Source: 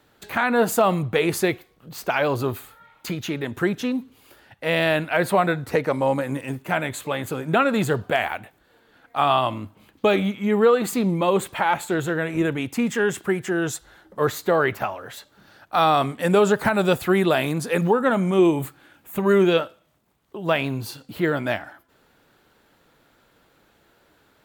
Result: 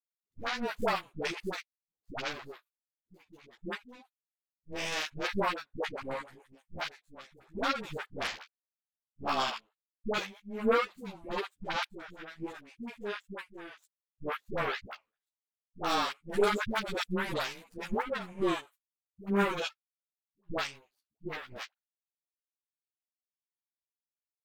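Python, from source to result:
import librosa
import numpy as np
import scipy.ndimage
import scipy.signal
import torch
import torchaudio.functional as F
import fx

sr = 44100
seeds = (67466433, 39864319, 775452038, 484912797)

y = fx.power_curve(x, sr, exponent=3.0)
y = fx.dispersion(y, sr, late='highs', ms=96.0, hz=500.0)
y = fx.ensemble(y, sr)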